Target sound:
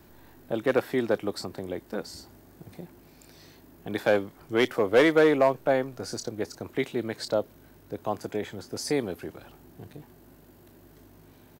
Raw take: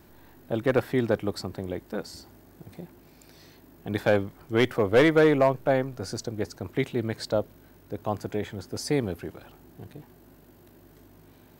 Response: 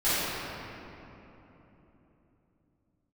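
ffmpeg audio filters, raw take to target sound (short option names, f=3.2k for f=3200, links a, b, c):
-filter_complex "[0:a]acrossover=split=210|3500[a][b][c];[a]acompressor=threshold=-43dB:ratio=6[d];[c]asplit=2[e][f];[f]adelay=27,volume=-5.5dB[g];[e][g]amix=inputs=2:normalize=0[h];[d][b][h]amix=inputs=3:normalize=0"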